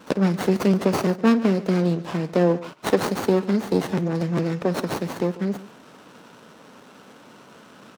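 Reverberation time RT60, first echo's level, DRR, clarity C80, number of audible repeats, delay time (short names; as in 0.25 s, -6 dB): none, -18.5 dB, none, none, 2, 51 ms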